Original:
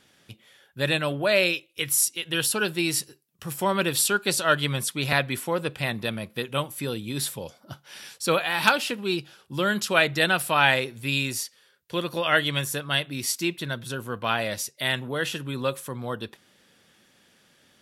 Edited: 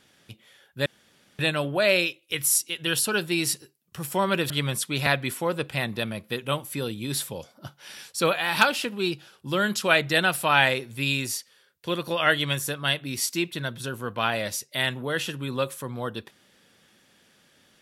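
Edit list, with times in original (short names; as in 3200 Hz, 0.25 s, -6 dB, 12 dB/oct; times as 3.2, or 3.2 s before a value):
0.86 insert room tone 0.53 s
3.97–4.56 cut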